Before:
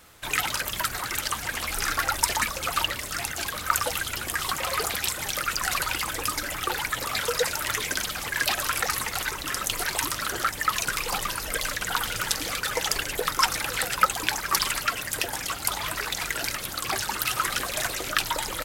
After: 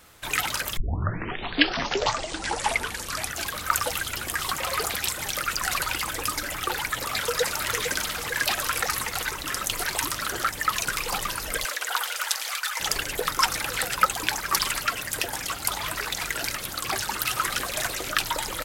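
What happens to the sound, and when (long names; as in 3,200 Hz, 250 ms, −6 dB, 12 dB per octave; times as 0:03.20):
0:00.77: tape start 2.67 s
0:06.92–0:07.70: delay throw 450 ms, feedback 55%, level −8 dB
0:11.64–0:12.79: high-pass filter 370 Hz → 920 Hz 24 dB per octave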